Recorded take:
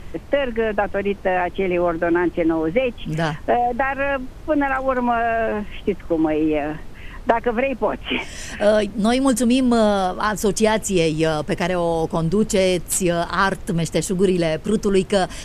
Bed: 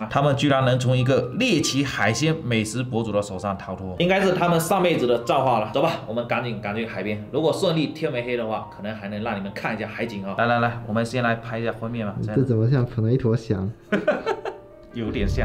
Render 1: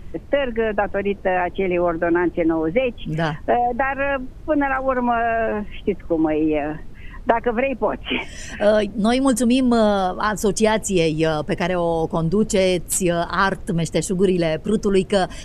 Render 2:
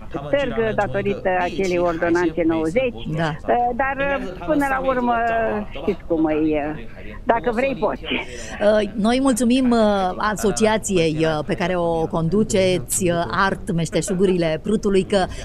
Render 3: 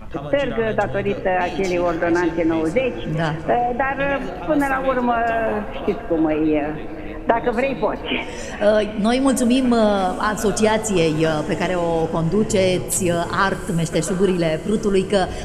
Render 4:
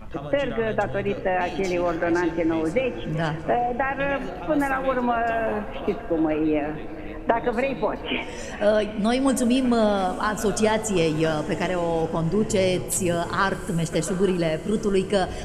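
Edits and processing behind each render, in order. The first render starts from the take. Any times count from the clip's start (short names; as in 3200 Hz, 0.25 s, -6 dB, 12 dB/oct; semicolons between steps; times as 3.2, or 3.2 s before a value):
denoiser 8 dB, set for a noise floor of -37 dBFS
add bed -12 dB
diffused feedback echo 0.82 s, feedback 42%, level -16 dB; FDN reverb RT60 2 s, high-frequency decay 0.65×, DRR 13.5 dB
gain -4 dB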